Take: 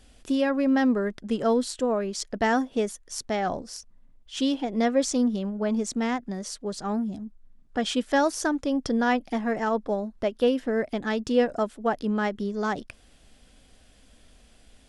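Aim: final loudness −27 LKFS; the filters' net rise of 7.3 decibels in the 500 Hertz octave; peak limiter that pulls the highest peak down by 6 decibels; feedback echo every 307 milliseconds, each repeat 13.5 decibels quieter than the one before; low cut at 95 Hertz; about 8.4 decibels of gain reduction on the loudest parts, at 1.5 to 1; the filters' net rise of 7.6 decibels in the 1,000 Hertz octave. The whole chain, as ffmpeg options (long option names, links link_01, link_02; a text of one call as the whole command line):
ffmpeg -i in.wav -af "highpass=95,equalizer=frequency=500:width_type=o:gain=6.5,equalizer=frequency=1000:width_type=o:gain=7.5,acompressor=threshold=-34dB:ratio=1.5,alimiter=limit=-19dB:level=0:latency=1,aecho=1:1:307|614:0.211|0.0444,volume=2.5dB" out.wav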